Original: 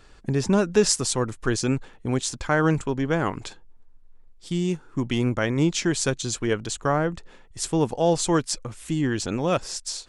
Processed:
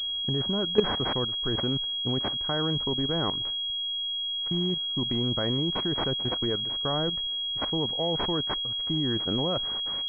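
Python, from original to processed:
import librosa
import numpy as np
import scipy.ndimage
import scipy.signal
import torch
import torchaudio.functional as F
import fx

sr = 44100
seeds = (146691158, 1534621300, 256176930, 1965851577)

y = fx.level_steps(x, sr, step_db=14)
y = fx.pwm(y, sr, carrier_hz=3300.0)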